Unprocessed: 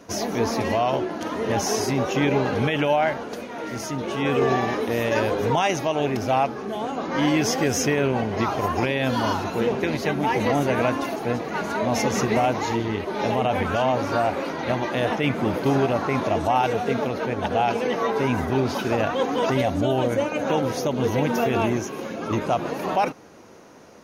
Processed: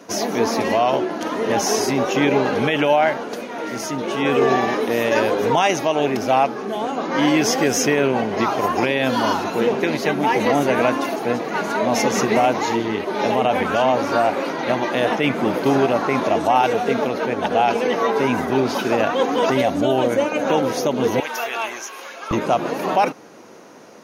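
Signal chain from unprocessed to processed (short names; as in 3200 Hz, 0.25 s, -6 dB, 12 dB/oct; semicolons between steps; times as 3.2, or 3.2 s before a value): HPF 190 Hz 12 dB/oct, from 21.2 s 1000 Hz, from 22.31 s 170 Hz; gain +4.5 dB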